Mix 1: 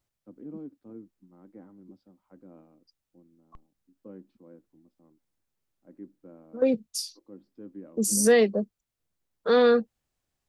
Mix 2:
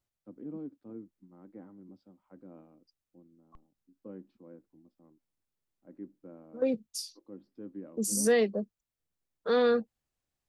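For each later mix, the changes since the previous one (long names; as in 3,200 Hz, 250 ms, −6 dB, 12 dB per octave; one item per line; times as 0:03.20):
second voice −5.5 dB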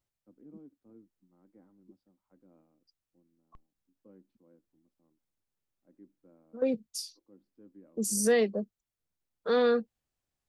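first voice −11.5 dB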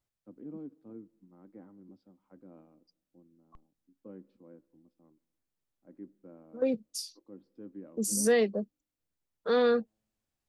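first voice +8.0 dB
reverb: on, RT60 1.1 s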